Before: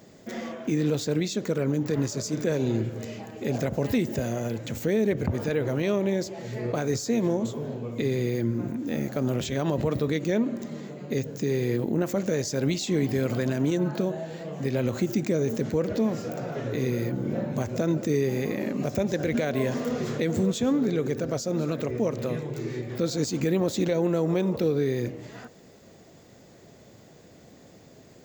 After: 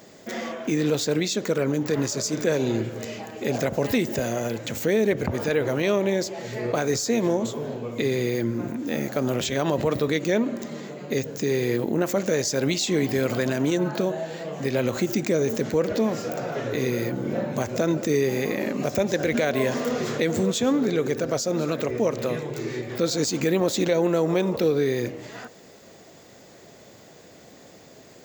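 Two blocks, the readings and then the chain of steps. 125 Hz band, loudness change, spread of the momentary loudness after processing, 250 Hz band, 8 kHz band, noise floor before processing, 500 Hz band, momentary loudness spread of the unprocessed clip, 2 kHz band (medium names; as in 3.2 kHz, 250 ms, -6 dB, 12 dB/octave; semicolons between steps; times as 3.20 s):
-1.5 dB, +2.5 dB, 8 LU, +1.0 dB, +6.5 dB, -52 dBFS, +3.5 dB, 7 LU, +6.5 dB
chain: bass shelf 280 Hz -10 dB; trim +6.5 dB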